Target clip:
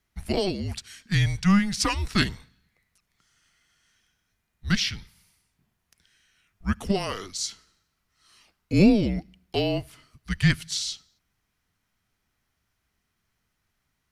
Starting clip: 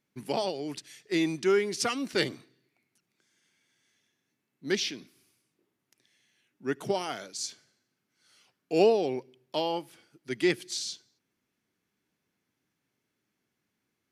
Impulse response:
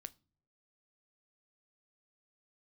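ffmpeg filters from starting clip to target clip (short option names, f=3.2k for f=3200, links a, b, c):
-af "bandreject=f=740:w=12,afreqshift=-200,volume=5dB"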